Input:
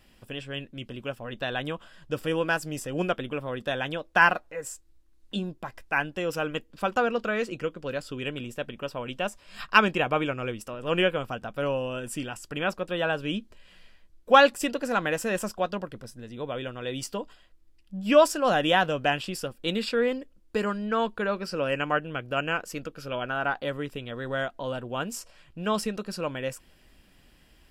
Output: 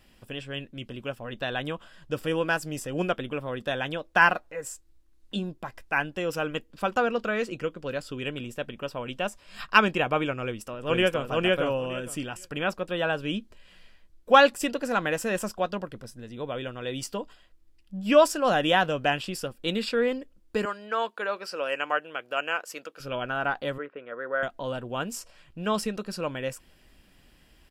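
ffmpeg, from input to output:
-filter_complex "[0:a]asplit=2[s0][s1];[s1]afade=t=in:st=10.43:d=0.01,afade=t=out:st=11.27:d=0.01,aecho=0:1:460|920|1380:0.944061|0.141609|0.0212414[s2];[s0][s2]amix=inputs=2:normalize=0,asettb=1/sr,asplit=3[s3][s4][s5];[s3]atrim=end=20.654[s6];[s4]atrim=start=20.65:end=23,asetpts=PTS-STARTPTS,afade=t=in:d=0.004:c=qsin,afade=t=out:st=2.346:d=0.004:c=qsin,highpass=500[s7];[s5]atrim=start=22.996[s8];[s6][s7]acrossfade=d=0.004:c1=hsin:c2=qsin[s9];[s9][s8]acrossfade=d=0.004:c1=qsin:c2=hsin,asettb=1/sr,asplit=3[s10][s11][s12];[s10]atrim=end=23.784[s13];[s11]atrim=start=23.78:end=24.43,asetpts=PTS-STARTPTS,afade=t=in:d=0.004:c=qsin,afade=t=out:st=0.646:d=0.004:c=qsin,highpass=440,equalizer=f=520:t=q:w=4:g=5,equalizer=f=810:t=q:w=4:g=-6,equalizer=f=1400:t=q:w=4:g=6,lowpass=f=2000:w=0.5412,lowpass=f=2000:w=1.3066[s14];[s12]atrim=start=24.426[s15];[s13][s14]acrossfade=d=0.004:c1=hsin:c2=qsin[s16];[s16][s15]acrossfade=d=0.004:c1=qsin:c2=hsin"

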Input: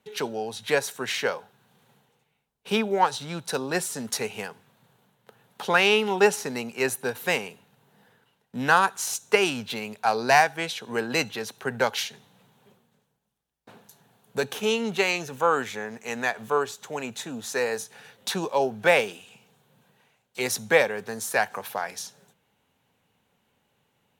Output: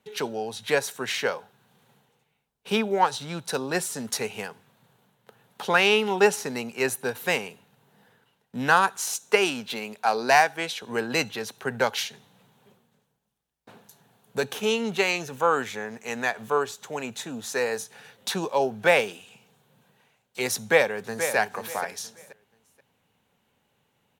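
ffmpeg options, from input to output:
-filter_complex "[0:a]asettb=1/sr,asplit=3[s0][s1][s2];[s0]atrim=end=9.004[s3];[s1]atrim=start=9:end=10.83,asetpts=PTS-STARTPTS,afade=t=in:d=0.004:c=qsin,afade=t=out:st=1.826:d=0.004:c=qsin,highpass=180[s4];[s2]atrim=start=10.826[s5];[s3][s4]acrossfade=d=0.004:c1=hsin:c2=qsin[s6];[s6][s5]acrossfade=d=0.004:c1=qsin:c2=hsin,asplit=2[s7][s8];[s8]afade=t=in:st=20.56:d=0.01,afade=t=out:st=21.36:d=0.01,aecho=0:1:480|960|1440:0.354813|0.0887033|0.0221758[s9];[s7][s9]amix=inputs=2:normalize=0"

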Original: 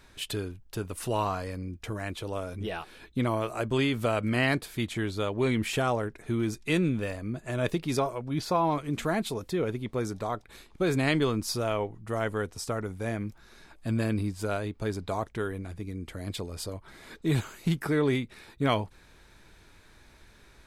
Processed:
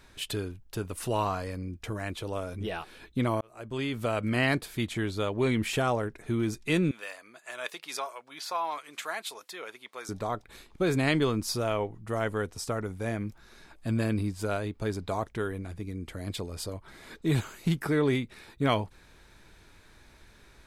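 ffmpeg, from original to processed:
-filter_complex "[0:a]asettb=1/sr,asplit=3[s0][s1][s2];[s0]atrim=end=6.914[s3];[s1]atrim=start=6.91:end=10.09,asetpts=PTS-STARTPTS,afade=t=in:d=0.004:c=qsin,afade=t=out:st=3.176:d=0.004:c=qsin,highpass=1000[s4];[s2]atrim=start=10.086[s5];[s3][s4]acrossfade=d=0.004:c1=hsin:c2=qsin[s6];[s6][s5]acrossfade=d=0.004:c1=qsin:c2=hsin,asplit=2[s7][s8];[s7]atrim=end=3.41,asetpts=PTS-STARTPTS,afade=t=out:st=3.406:d=0.004:c=hsin[s9];[s8]atrim=start=3.41,asetpts=PTS-STARTPTS,afade=t=in:d=1.22:c=qsin[s10];[s9][s10]concat=n=2:v=0:a=1"

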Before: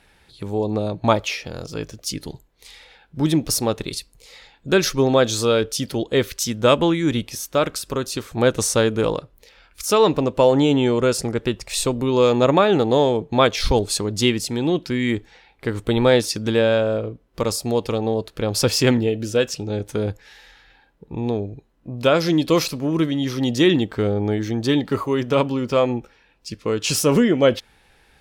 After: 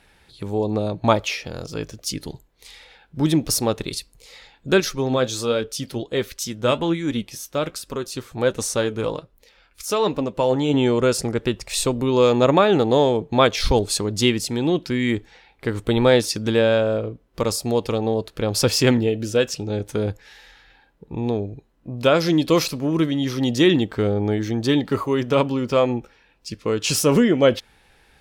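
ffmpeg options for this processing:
-filter_complex "[0:a]asettb=1/sr,asplit=3[s0][s1][s2];[s0]atrim=end=4.804[s3];[s1]atrim=start=4.8:end=10.74,asetpts=PTS-STARTPTS,afade=t=in:d=0.004:c=qsin,afade=t=out:st=5.936:d=0.004:c=qsin,flanger=delay=3.4:depth=5.1:regen=62:speed=1.3:shape=triangular[s4];[s2]atrim=start=10.736[s5];[s3][s4]acrossfade=d=0.004:c1=hsin:c2=qsin[s6];[s6][s5]acrossfade=d=0.004:c1=qsin:c2=hsin"

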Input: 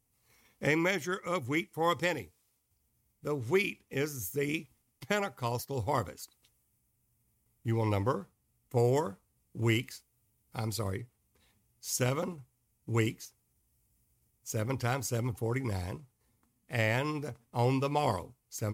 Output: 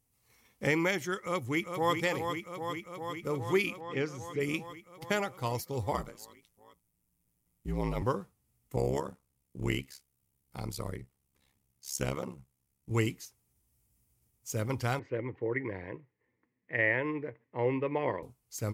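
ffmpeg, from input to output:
-filter_complex "[0:a]asplit=2[s0][s1];[s1]afade=t=in:st=1.22:d=0.01,afade=t=out:st=1.99:d=0.01,aecho=0:1:400|800|1200|1600|2000|2400|2800|3200|3600|4000|4400|4800:0.473151|0.378521|0.302817|0.242253|0.193803|0.155042|0.124034|0.099227|0.0793816|0.0635053|0.0508042|0.0406434[s2];[s0][s2]amix=inputs=2:normalize=0,asplit=3[s3][s4][s5];[s3]afade=t=out:st=3.8:d=0.02[s6];[s4]highpass=110,lowpass=4200,afade=t=in:st=3.8:d=0.02,afade=t=out:st=4.39:d=0.02[s7];[s5]afade=t=in:st=4.39:d=0.02[s8];[s6][s7][s8]amix=inputs=3:normalize=0,asettb=1/sr,asplit=3[s9][s10][s11];[s9]atrim=end=5.914[s12];[s10]atrim=start=5.91:end=8.02,asetpts=PTS-STARTPTS,afade=t=in:d=0.004:c=qsin,afade=t=out:st=2.106:d=0.004:c=qsin,aeval=exprs='val(0)*sin(2*PI*55*n/s)':c=same[s13];[s11]atrim=start=8.016[s14];[s12][s13]acrossfade=d=0.004:c1=hsin:c2=qsin[s15];[s15][s14]acrossfade=d=0.004:c1=qsin:c2=hsin,asettb=1/sr,asplit=3[s16][s17][s18];[s16]atrim=end=8.764[s19];[s17]atrim=start=8.76:end=12.91,asetpts=PTS-STARTPTS,afade=t=in:d=0.004:c=qsin,afade=t=out:st=4.146:d=0.004:c=qsin,tremolo=f=68:d=0.889[s20];[s18]atrim=start=12.906[s21];[s19][s20]acrossfade=d=0.004:c1=hsin:c2=qsin[s22];[s22][s21]acrossfade=d=0.004:c1=qsin:c2=hsin,asettb=1/sr,asplit=3[s23][s24][s25];[s23]atrim=end=14.994[s26];[s24]atrim=start=14.99:end=18.23,asetpts=PTS-STARTPTS,afade=t=in:d=0.004:c=qsin,afade=t=out:st=3.236:d=0.004:c=qsin,highpass=180,equalizer=f=220:t=q:w=4:g=-8,equalizer=f=320:t=q:w=4:g=4,equalizer=f=490:t=q:w=4:g=4,equalizer=f=750:t=q:w=4:g=-9,equalizer=f=1300:t=q:w=4:g=-9,equalizer=f=1900:t=q:w=4:g=10,lowpass=f=2300:w=0.5412,lowpass=f=2300:w=1.3066[s27];[s25]atrim=start=18.226[s28];[s26][s27]acrossfade=d=0.004:c1=hsin:c2=qsin[s29];[s29][s28]acrossfade=d=0.004:c1=qsin:c2=hsin"

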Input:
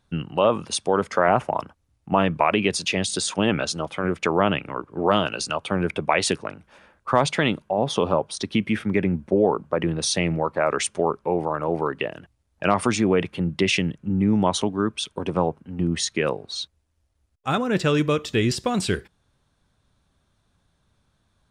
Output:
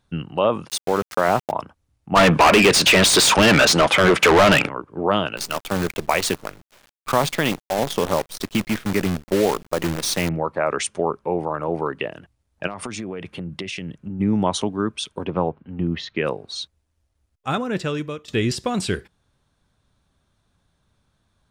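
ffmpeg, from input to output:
-filter_complex "[0:a]asplit=3[s0][s1][s2];[s0]afade=t=out:st=0.67:d=0.02[s3];[s1]aeval=exprs='val(0)*gte(abs(val(0)),0.0447)':c=same,afade=t=in:st=0.67:d=0.02,afade=t=out:st=1.5:d=0.02[s4];[s2]afade=t=in:st=1.5:d=0.02[s5];[s3][s4][s5]amix=inputs=3:normalize=0,asplit=3[s6][s7][s8];[s6]afade=t=out:st=2.15:d=0.02[s9];[s7]asplit=2[s10][s11];[s11]highpass=f=720:p=1,volume=39.8,asoftclip=type=tanh:threshold=0.531[s12];[s10][s12]amix=inputs=2:normalize=0,lowpass=f=4900:p=1,volume=0.501,afade=t=in:st=2.15:d=0.02,afade=t=out:st=4.67:d=0.02[s13];[s8]afade=t=in:st=4.67:d=0.02[s14];[s9][s13][s14]amix=inputs=3:normalize=0,asettb=1/sr,asplit=3[s15][s16][s17];[s15]atrim=end=5.374[s18];[s16]atrim=start=5.37:end=10.29,asetpts=PTS-STARTPTS,afade=t=in:d=0.004:c=qsin,afade=t=out:st=4.916:d=0.004:c=qsin,acrusher=bits=5:dc=4:mix=0:aa=0.000001[s19];[s17]atrim=start=10.286[s20];[s18][s19]acrossfade=d=0.004:c1=hsin:c2=qsin[s21];[s21][s20]acrossfade=d=0.004:c1=qsin:c2=hsin,asplit=3[s22][s23][s24];[s22]afade=t=out:st=12.66:d=0.02[s25];[s23]acompressor=threshold=0.0501:ratio=10:attack=3.2:release=140:knee=1:detection=peak,afade=t=in:st=12.66:d=0.02,afade=t=out:st=14.19:d=0.02[s26];[s24]afade=t=in:st=14.19:d=0.02[s27];[s25][s26][s27]amix=inputs=3:normalize=0,asettb=1/sr,asplit=3[s28][s29][s30];[s28]atrim=end=15.254[s31];[s29]atrim=start=15.25:end=16.25,asetpts=PTS-STARTPTS,afade=t=in:d=0.004:c=qsin,afade=t=out:st=0.996:d=0.004:c=qsin,lowpass=f=3700:w=0.5412,lowpass=f=3700:w=1.3066[s32];[s30]atrim=start=16.246[s33];[s31][s32]acrossfade=d=0.004:c1=hsin:c2=qsin[s34];[s34][s33]acrossfade=d=0.004:c1=qsin:c2=hsin,asplit=2[s35][s36];[s35]atrim=end=18.28,asetpts=PTS-STARTPTS,afade=t=out:st=17.5:d=0.78:silence=0.188365[s37];[s36]atrim=start=18.28,asetpts=PTS-STARTPTS,afade=t=in:d=0.004:c=hsin:silence=0.188365[s38];[s37][s38]concat=n=2:v=0:a=1"

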